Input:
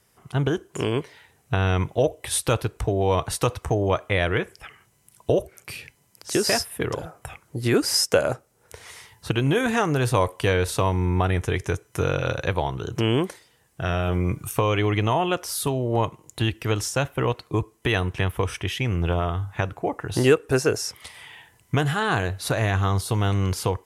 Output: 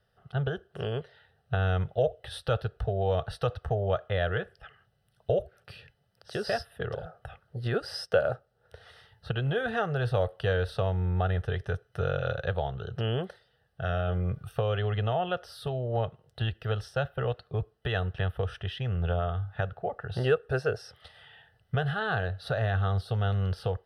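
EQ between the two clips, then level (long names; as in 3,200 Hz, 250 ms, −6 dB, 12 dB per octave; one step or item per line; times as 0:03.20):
high-shelf EQ 4,300 Hz −11.5 dB
parametric band 12,000 Hz −12.5 dB 0.54 octaves
phaser with its sweep stopped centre 1,500 Hz, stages 8
−3.0 dB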